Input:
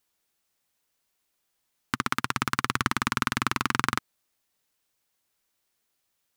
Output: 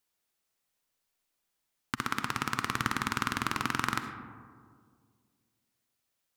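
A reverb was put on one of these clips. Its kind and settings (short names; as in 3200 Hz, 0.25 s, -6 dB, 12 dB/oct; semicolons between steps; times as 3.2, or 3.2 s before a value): digital reverb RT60 2 s, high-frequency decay 0.3×, pre-delay 25 ms, DRR 7 dB; gain -5 dB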